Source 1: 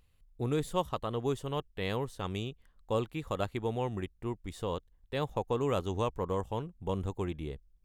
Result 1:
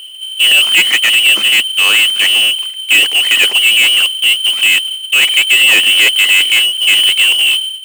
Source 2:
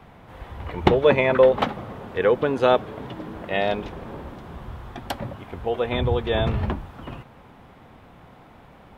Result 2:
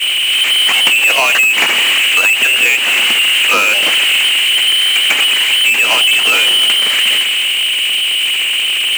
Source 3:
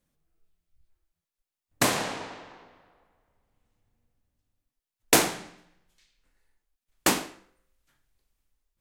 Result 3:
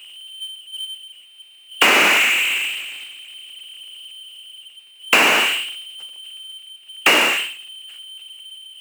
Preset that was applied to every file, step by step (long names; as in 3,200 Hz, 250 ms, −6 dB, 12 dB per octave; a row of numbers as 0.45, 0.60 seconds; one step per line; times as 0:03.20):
downward expander −48 dBFS
high-frequency loss of the air 72 metres
low-pass that shuts in the quiet parts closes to 480 Hz, open at −21 dBFS
voice inversion scrambler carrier 3,100 Hz
power curve on the samples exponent 0.35
tilt shelving filter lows +3.5 dB, about 1,100 Hz
downward compressor, threshold −17 dBFS
high-pass filter 230 Hz 24 dB per octave
normalise the peak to −1.5 dBFS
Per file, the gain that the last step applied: +17.5, +8.0, +7.0 decibels